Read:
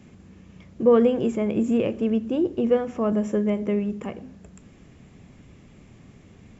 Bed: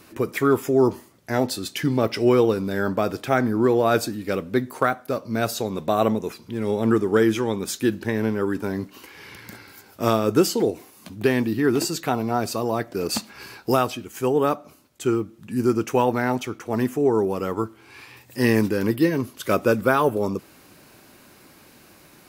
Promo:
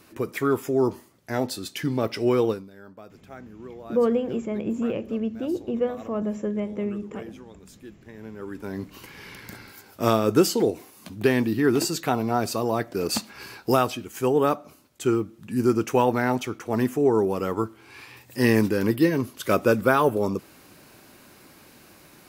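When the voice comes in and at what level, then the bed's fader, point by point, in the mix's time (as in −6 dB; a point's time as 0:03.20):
3.10 s, −4.5 dB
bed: 0:02.51 −4 dB
0:02.71 −22.5 dB
0:08.02 −22.5 dB
0:08.95 −0.5 dB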